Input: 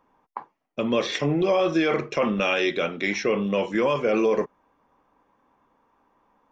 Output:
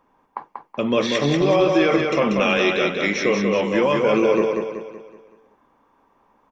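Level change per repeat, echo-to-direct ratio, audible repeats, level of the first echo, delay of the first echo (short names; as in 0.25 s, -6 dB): -7.0 dB, -3.0 dB, 5, -4.0 dB, 0.188 s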